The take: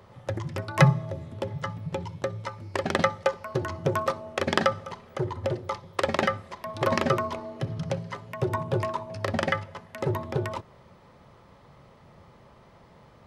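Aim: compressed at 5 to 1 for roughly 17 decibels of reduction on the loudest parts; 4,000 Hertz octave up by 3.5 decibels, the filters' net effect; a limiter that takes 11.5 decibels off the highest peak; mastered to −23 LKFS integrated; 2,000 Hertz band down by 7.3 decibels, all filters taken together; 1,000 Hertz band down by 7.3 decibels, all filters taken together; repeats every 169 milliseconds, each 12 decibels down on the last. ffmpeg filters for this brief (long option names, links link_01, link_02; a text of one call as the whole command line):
ffmpeg -i in.wav -af "equalizer=frequency=1000:width_type=o:gain=-7,equalizer=frequency=2000:width_type=o:gain=-8.5,equalizer=frequency=4000:width_type=o:gain=8,acompressor=threshold=-32dB:ratio=5,alimiter=level_in=2.5dB:limit=-24dB:level=0:latency=1,volume=-2.5dB,aecho=1:1:169|338|507:0.251|0.0628|0.0157,volume=17dB" out.wav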